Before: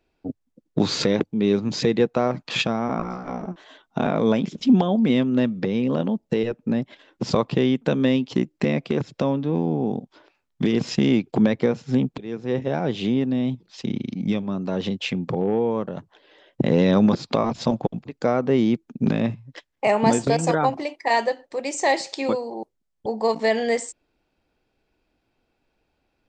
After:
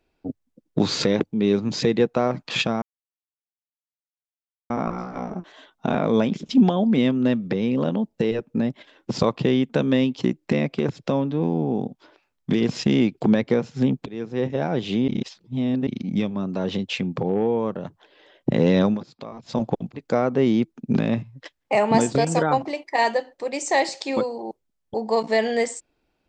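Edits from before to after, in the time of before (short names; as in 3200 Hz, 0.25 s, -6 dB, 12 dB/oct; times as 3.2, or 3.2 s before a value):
2.82 insert silence 1.88 s
13.2–13.99 reverse
16.93–17.75 dip -15.5 dB, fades 0.19 s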